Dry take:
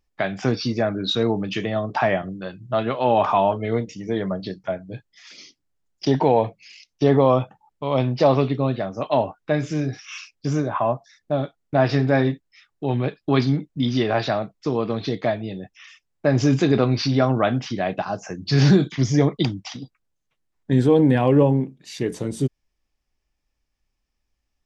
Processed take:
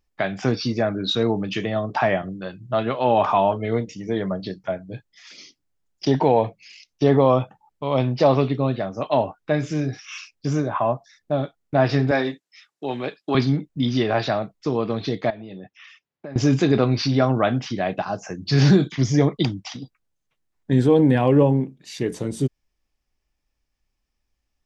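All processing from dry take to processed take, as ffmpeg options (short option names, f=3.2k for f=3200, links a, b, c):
-filter_complex "[0:a]asettb=1/sr,asplit=3[a][b][c];[a]atrim=end=12.114[d];[b]atrim=start=12.11:end=13.35,asetpts=PTS-STARTPTS,afade=t=in:d=0.004:c=qsin,afade=t=out:st=1.236:d=0.004:c=qsin,highpass=160,lowpass=7k,aemphasis=mode=production:type=bsi[e];[c]atrim=start=13.346[f];[d][e]acrossfade=d=0.004:c1=hsin:c2=qsin[g];[g][f]acrossfade=d=0.004:c1=qsin:c2=hsin,asettb=1/sr,asplit=3[h][i][j];[h]atrim=end=15.304[k];[i]atrim=start=15.3:end=16.36,asetpts=PTS-STARTPTS,afade=t=in:d=0.004:c=qsin,afade=t=out:st=1.056:d=0.004:c=qsin,acompressor=threshold=-32dB:ratio=6:attack=3.2:release=140:knee=1:detection=peak,highpass=130,lowpass=4.2k[l];[j]atrim=start=16.356[m];[k][l]acrossfade=d=0.004:c1=hsin:c2=qsin[n];[n][m]acrossfade=d=0.004:c1=qsin:c2=hsin"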